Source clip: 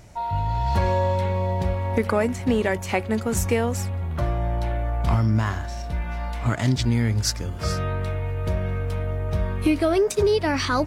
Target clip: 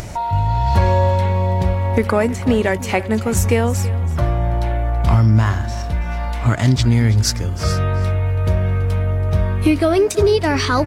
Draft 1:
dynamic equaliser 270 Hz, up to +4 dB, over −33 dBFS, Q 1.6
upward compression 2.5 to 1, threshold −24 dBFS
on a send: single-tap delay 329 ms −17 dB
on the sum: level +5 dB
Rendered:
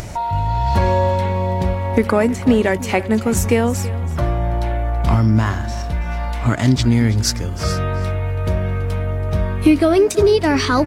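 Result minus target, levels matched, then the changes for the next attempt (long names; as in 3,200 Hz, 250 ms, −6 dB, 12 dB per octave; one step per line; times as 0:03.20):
250 Hz band +3.0 dB
change: dynamic equaliser 96 Hz, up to +4 dB, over −33 dBFS, Q 1.6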